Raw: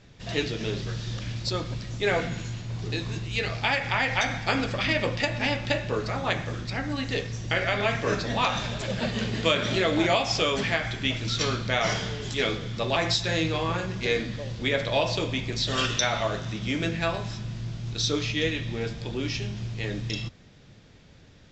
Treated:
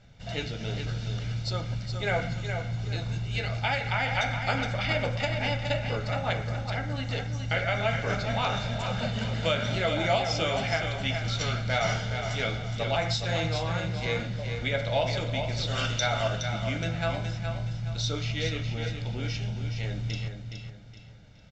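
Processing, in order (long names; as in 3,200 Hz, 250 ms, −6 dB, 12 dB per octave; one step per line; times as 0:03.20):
high-shelf EQ 4,600 Hz −5 dB
comb filter 1.4 ms, depth 57%
on a send: repeating echo 418 ms, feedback 33%, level −7 dB
on the sum: level −4 dB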